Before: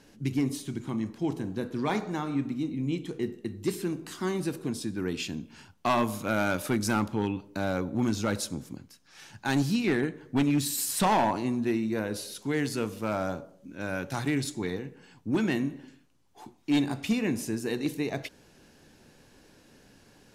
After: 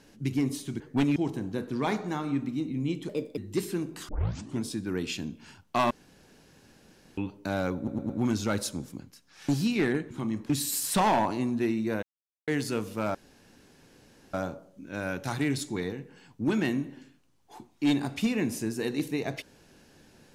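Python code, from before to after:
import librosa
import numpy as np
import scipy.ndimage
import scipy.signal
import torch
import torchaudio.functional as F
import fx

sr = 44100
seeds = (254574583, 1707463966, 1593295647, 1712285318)

y = fx.edit(x, sr, fx.swap(start_s=0.8, length_s=0.39, other_s=10.19, other_length_s=0.36),
    fx.speed_span(start_s=3.12, length_s=0.36, speed=1.26),
    fx.tape_start(start_s=4.19, length_s=0.54),
    fx.room_tone_fill(start_s=6.01, length_s=1.27),
    fx.stutter(start_s=7.87, slice_s=0.11, count=4),
    fx.cut(start_s=9.26, length_s=0.31),
    fx.silence(start_s=12.08, length_s=0.45),
    fx.insert_room_tone(at_s=13.2, length_s=1.19), tone=tone)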